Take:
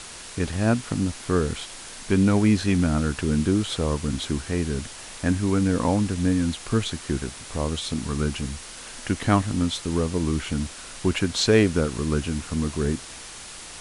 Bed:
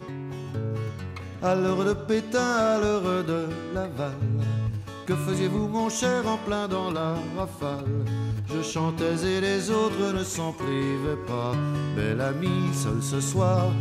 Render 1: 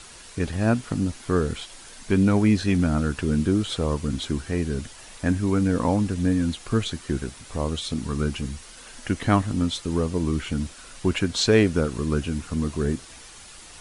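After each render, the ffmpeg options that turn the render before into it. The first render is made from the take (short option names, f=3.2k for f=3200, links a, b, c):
-af "afftdn=nr=7:nf=-40"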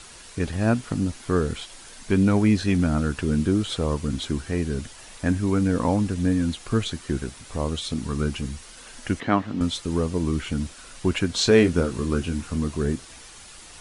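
-filter_complex "[0:a]asettb=1/sr,asplit=3[a][b][c];[a]atrim=end=9.204[d];[b]atrim=start=9.2:end=9.61,asetpts=PTS-STARTPTS,afade=t=in:d=0.004:c=qsin,afade=t=out:st=0.406:d=0.004:c=qsin,highpass=180,lowpass=3.5k[e];[c]atrim=start=9.606[f];[d][e]acrossfade=d=0.004:c1=hsin:c2=qsin[g];[g][f]acrossfade=d=0.004:c1=qsin:c2=hsin,asettb=1/sr,asplit=3[h][i][j];[h]atrim=end=11.334[k];[i]atrim=start=11.33:end=12.58,asetpts=PTS-STARTPTS,afade=t=in:d=0.004:c=qsin,afade=t=out:st=1.246:d=0.004:c=qsin,asplit=2[l][m];[m]adelay=23,volume=-8dB[n];[l][n]amix=inputs=2:normalize=0,atrim=end_sample=55125[o];[j]atrim=start=12.576[p];[k][o]acrossfade=d=0.004:c1=hsin:c2=qsin[q];[q][p]acrossfade=d=0.004:c1=qsin:c2=hsin"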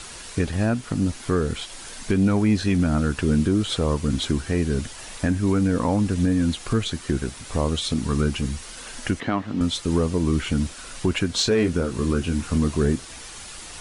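-af "acontrast=49,alimiter=limit=-11.5dB:level=0:latency=1:release=471"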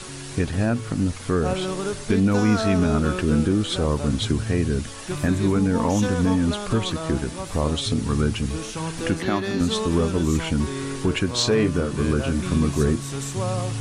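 -filter_complex "[1:a]volume=-3.5dB[a];[0:a][a]amix=inputs=2:normalize=0"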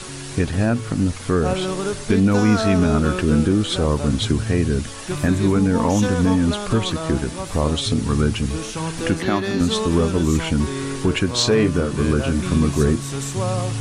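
-af "volume=3dB"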